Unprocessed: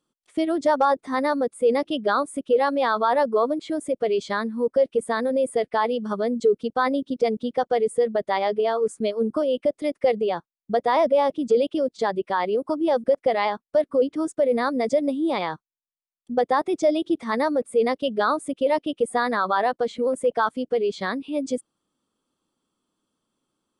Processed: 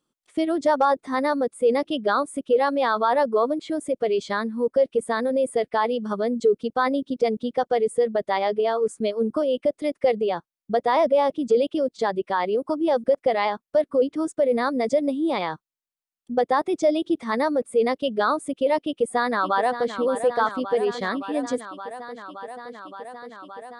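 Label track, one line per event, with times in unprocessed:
18.820000	19.940000	echo throw 570 ms, feedback 85%, level -10.5 dB

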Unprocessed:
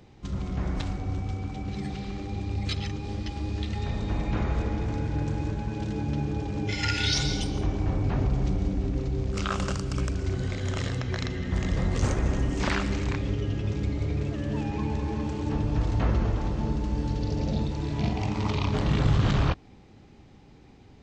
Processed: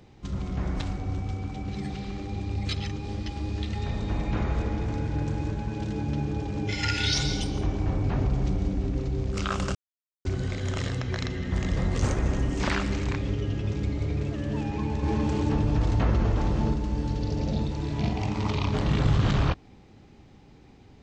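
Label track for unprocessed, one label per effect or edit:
9.750000	10.250000	mute
15.030000	16.740000	level flattener amount 50%

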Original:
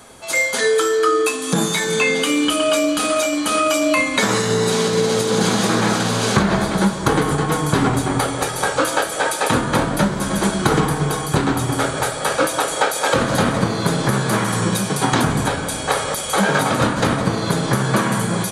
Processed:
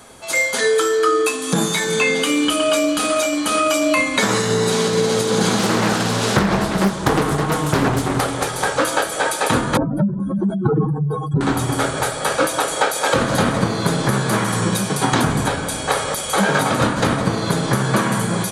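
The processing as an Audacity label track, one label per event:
5.590000	8.850000	loudspeaker Doppler distortion depth 0.77 ms
9.770000	11.410000	spectral contrast enhancement exponent 2.9

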